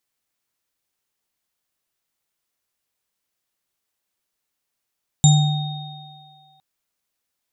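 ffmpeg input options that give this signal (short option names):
-f lavfi -i "aevalsrc='0.398*pow(10,-3*t/1.46)*sin(2*PI*149*t)+0.0562*pow(10,-3*t/2.68)*sin(2*PI*769*t)+0.0944*pow(10,-3*t/2.08)*sin(2*PI*3710*t)+0.2*pow(10,-3*t/0.4)*sin(2*PI*7210*t)':d=1.36:s=44100"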